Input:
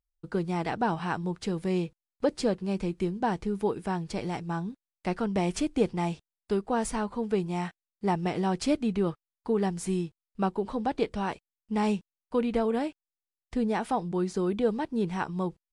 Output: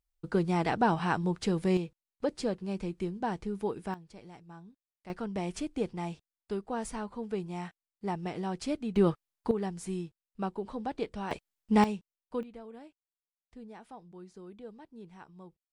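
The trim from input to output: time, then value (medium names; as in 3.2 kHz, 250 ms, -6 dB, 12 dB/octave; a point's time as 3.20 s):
+1.5 dB
from 1.77 s -5 dB
from 3.94 s -17.5 dB
from 5.10 s -7 dB
from 8.96 s +3 dB
from 9.51 s -6.5 dB
from 11.31 s +5 dB
from 11.84 s -7.5 dB
from 12.43 s -20 dB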